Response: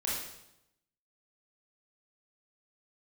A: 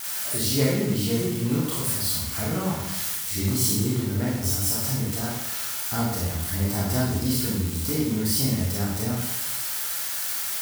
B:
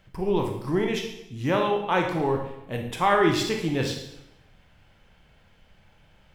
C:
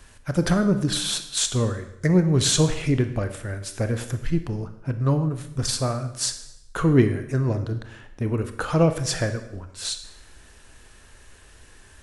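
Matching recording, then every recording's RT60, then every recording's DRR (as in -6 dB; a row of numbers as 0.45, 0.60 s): A; 0.85, 0.85, 0.85 s; -6.5, 2.0, 8.5 dB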